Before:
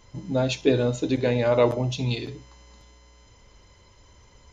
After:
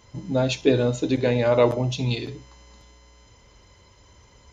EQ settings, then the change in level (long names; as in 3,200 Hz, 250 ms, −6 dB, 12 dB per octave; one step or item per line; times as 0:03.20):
high-pass filter 41 Hz
+1.5 dB